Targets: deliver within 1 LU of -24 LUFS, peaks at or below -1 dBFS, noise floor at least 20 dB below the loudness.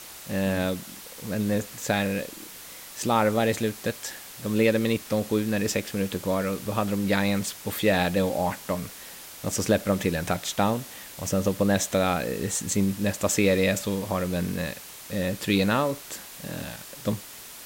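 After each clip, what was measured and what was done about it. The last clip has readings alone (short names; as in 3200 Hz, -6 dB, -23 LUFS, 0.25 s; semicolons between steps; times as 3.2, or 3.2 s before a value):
noise floor -43 dBFS; noise floor target -47 dBFS; loudness -26.5 LUFS; peak -8.5 dBFS; loudness target -24.0 LUFS
-> noise print and reduce 6 dB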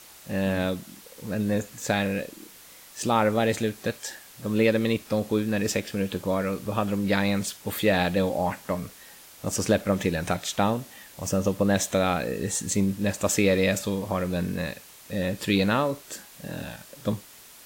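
noise floor -49 dBFS; loudness -26.5 LUFS; peak -8.5 dBFS; loudness target -24.0 LUFS
-> gain +2.5 dB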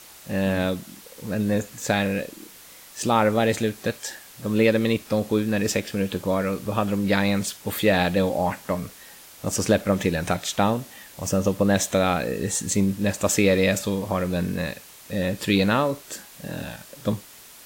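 loudness -24.0 LUFS; peak -6.0 dBFS; noise floor -47 dBFS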